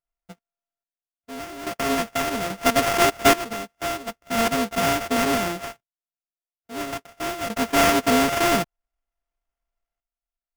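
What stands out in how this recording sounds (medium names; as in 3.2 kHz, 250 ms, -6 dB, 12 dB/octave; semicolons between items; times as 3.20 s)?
a buzz of ramps at a fixed pitch in blocks of 64 samples; random-step tremolo 1.2 Hz, depth 90%; aliases and images of a low sample rate 4.1 kHz, jitter 20%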